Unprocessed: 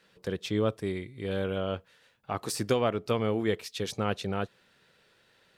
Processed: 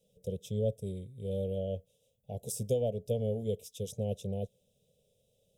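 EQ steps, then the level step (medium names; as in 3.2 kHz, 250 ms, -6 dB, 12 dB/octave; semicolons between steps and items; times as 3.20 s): elliptic band-stop 540–3900 Hz, stop band 80 dB; static phaser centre 1.2 kHz, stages 6; +1.5 dB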